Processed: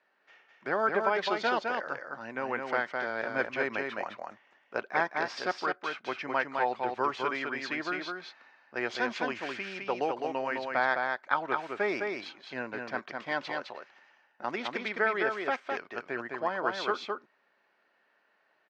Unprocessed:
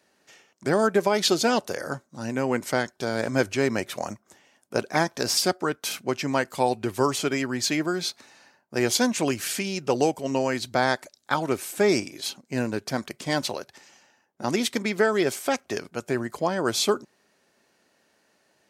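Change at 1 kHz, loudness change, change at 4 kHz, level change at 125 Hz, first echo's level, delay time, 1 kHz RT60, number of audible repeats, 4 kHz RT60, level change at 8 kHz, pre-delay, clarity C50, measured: -2.0 dB, -6.5 dB, -12.0 dB, -18.0 dB, -4.0 dB, 209 ms, no reverb, 1, no reverb, -25.5 dB, no reverb, no reverb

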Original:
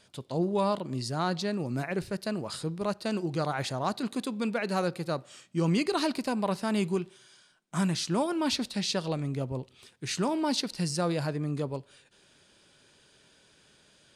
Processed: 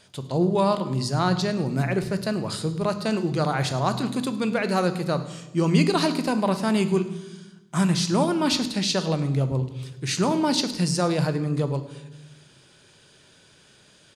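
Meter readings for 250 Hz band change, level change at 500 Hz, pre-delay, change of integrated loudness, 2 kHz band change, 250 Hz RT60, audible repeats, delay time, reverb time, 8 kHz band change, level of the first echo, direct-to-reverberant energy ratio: +6.5 dB, +6.0 dB, 3 ms, +6.5 dB, +6.0 dB, 1.5 s, 1, 105 ms, 1.1 s, +6.5 dB, -19.5 dB, 10.0 dB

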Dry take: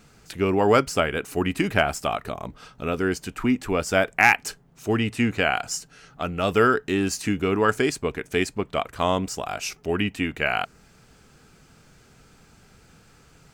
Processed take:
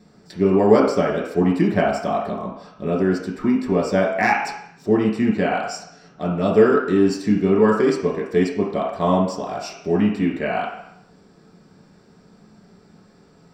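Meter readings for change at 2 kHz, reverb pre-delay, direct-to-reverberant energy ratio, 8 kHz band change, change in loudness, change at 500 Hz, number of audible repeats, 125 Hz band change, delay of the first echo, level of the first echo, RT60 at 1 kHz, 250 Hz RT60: -3.5 dB, 3 ms, -3.0 dB, -7.5 dB, +4.0 dB, +6.0 dB, no echo, +4.5 dB, no echo, no echo, 0.80 s, 0.55 s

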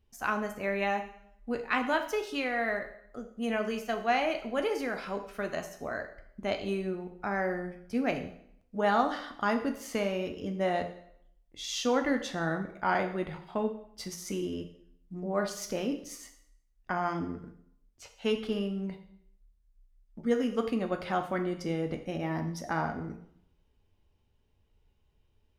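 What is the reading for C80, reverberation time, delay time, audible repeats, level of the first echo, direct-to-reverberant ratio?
13.0 dB, 0.70 s, no echo, no echo, no echo, 5.0 dB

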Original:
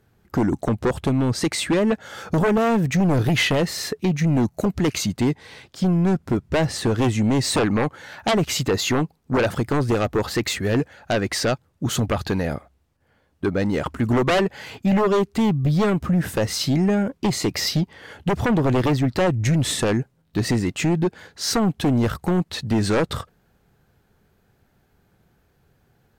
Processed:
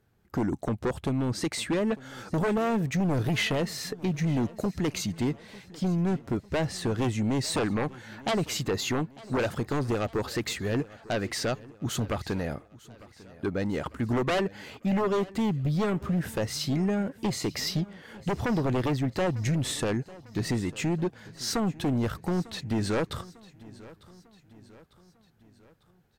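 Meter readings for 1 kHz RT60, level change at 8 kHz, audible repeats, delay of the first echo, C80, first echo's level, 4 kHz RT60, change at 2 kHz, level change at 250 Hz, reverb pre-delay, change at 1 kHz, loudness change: no reverb, -7.5 dB, 3, 899 ms, no reverb, -20.5 dB, no reverb, -7.5 dB, -7.5 dB, no reverb, -7.5 dB, -7.5 dB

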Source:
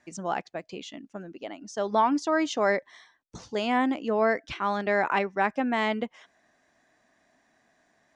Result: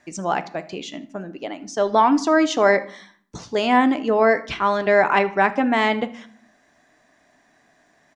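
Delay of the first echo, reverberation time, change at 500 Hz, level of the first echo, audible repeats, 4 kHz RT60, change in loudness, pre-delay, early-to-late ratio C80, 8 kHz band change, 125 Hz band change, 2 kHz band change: 78 ms, 0.60 s, +8.0 dB, -22.0 dB, 1, 0.35 s, +7.5 dB, 3 ms, 20.5 dB, +7.0 dB, +6.5 dB, +7.5 dB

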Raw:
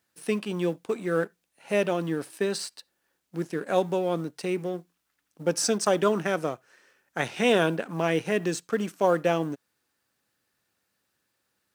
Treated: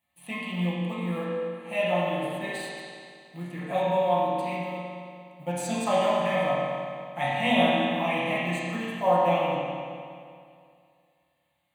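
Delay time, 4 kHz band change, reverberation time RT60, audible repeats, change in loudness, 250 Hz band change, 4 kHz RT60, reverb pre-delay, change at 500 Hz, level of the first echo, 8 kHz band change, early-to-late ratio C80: no echo, +1.5 dB, 2.3 s, no echo, 0.0 dB, -1.0 dB, 2.1 s, 6 ms, -0.5 dB, no echo, -9.0 dB, -1.5 dB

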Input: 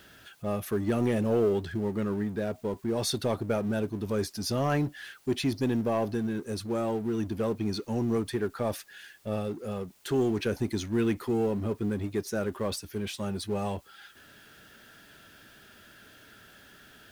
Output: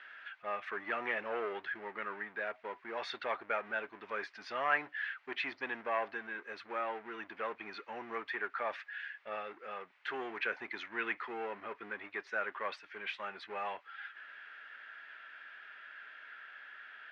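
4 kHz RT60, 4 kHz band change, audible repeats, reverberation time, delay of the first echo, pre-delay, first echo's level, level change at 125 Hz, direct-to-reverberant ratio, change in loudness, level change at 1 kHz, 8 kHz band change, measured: no reverb, -9.0 dB, no echo, no reverb, no echo, no reverb, no echo, under -30 dB, no reverb, -9.5 dB, -0.5 dB, under -25 dB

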